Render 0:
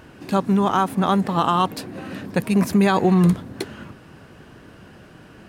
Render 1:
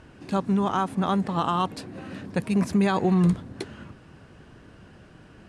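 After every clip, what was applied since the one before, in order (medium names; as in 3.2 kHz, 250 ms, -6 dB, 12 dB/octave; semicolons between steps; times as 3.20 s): low-pass 10 kHz 24 dB/octave; bass shelf 91 Hz +8 dB; trim -6 dB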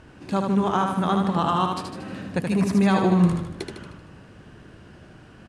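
feedback delay 77 ms, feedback 52%, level -4.5 dB; trim +1 dB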